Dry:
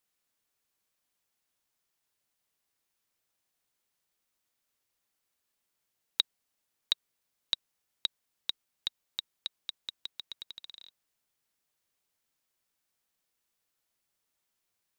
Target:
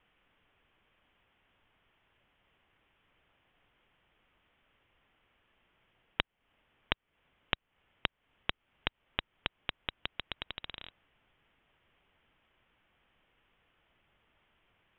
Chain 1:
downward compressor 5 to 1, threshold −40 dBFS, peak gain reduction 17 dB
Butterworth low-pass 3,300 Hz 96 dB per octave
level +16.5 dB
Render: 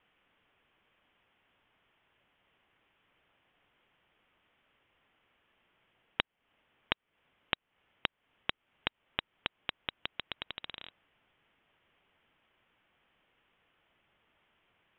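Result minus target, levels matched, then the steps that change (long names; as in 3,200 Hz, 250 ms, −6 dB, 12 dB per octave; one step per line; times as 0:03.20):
125 Hz band −4.0 dB
add after Butterworth low-pass: low-shelf EQ 83 Hz +11 dB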